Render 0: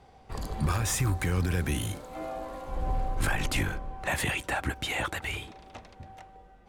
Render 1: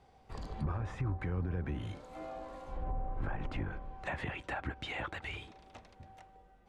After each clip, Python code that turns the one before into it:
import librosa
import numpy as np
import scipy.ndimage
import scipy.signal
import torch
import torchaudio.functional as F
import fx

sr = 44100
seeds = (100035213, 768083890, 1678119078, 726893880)

y = fx.env_lowpass_down(x, sr, base_hz=1100.0, full_db=-23.5)
y = y * librosa.db_to_amplitude(-7.5)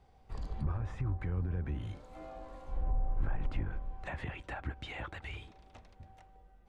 y = fx.low_shelf(x, sr, hz=82.0, db=12.0)
y = y * librosa.db_to_amplitude(-4.0)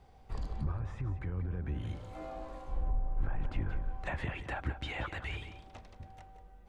y = x + 10.0 ** (-12.0 / 20.0) * np.pad(x, (int(178 * sr / 1000.0), 0))[:len(x)]
y = fx.rider(y, sr, range_db=3, speed_s=0.5)
y = y * librosa.db_to_amplitude(1.0)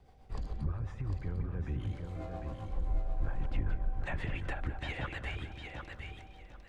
y = fx.rotary(x, sr, hz=7.5)
y = fx.echo_feedback(y, sr, ms=751, feedback_pct=20, wet_db=-5.5)
y = y * librosa.db_to_amplitude(1.0)